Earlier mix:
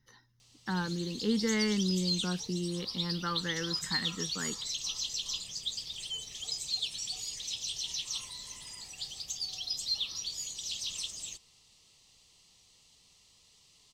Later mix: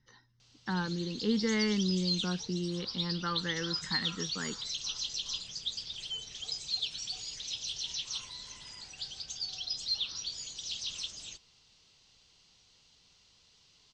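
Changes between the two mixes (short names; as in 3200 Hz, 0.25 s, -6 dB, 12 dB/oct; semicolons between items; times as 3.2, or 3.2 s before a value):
background: remove Butterworth band-stop 1500 Hz, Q 5; master: add LPF 6100 Hz 24 dB/oct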